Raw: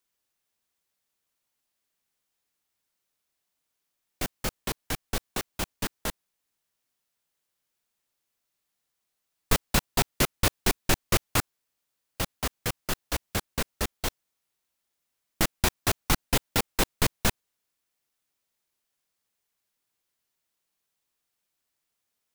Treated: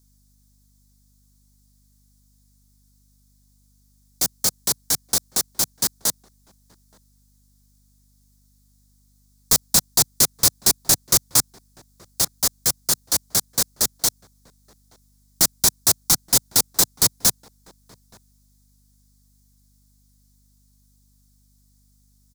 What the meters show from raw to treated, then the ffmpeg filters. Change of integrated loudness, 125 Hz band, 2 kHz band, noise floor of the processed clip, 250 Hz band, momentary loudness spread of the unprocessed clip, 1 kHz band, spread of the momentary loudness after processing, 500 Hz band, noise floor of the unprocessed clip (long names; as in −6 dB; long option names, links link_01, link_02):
+10.0 dB, −2.0 dB, −3.0 dB, −60 dBFS, −1.0 dB, 9 LU, −0.5 dB, 7 LU, −1.0 dB, −82 dBFS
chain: -filter_complex "[0:a]equalizer=frequency=130:width_type=o:width=1.9:gain=9.5,asplit=2[link_01][link_02];[link_02]acrusher=bits=4:dc=4:mix=0:aa=0.000001,volume=-11dB[link_03];[link_01][link_03]amix=inputs=2:normalize=0,asplit=2[link_04][link_05];[link_05]adelay=874.6,volume=-27dB,highshelf=frequency=4000:gain=-19.7[link_06];[link_04][link_06]amix=inputs=2:normalize=0,asplit=2[link_07][link_08];[link_08]highpass=frequency=720:poles=1,volume=19dB,asoftclip=type=tanh:threshold=-4dB[link_09];[link_07][link_09]amix=inputs=2:normalize=0,lowpass=frequency=1300:poles=1,volume=-6dB,acrossover=split=110|2100[link_10][link_11][link_12];[link_12]aexciter=amount=13.5:drive=7.8:freq=4200[link_13];[link_10][link_11][link_13]amix=inputs=3:normalize=0,aeval=exprs='val(0)+0.00316*(sin(2*PI*50*n/s)+sin(2*PI*2*50*n/s)/2+sin(2*PI*3*50*n/s)/3+sin(2*PI*4*50*n/s)/4+sin(2*PI*5*50*n/s)/5)':channel_layout=same,volume=-9dB"